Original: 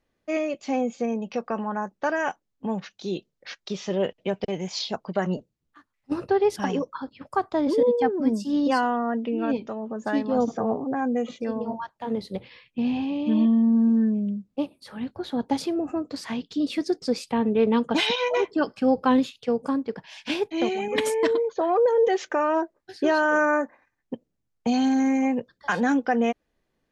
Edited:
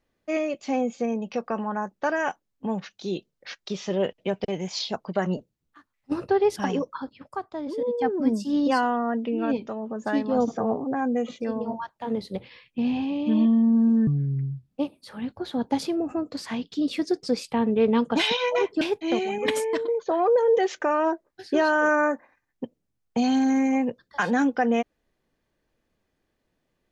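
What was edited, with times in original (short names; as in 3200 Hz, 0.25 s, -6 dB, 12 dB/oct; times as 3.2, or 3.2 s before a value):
7.08–8.13 dip -9 dB, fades 0.44 s quadratic
14.07–14.5 speed 67%
18.6–20.31 cut
20.9–21.38 fade out equal-power, to -9.5 dB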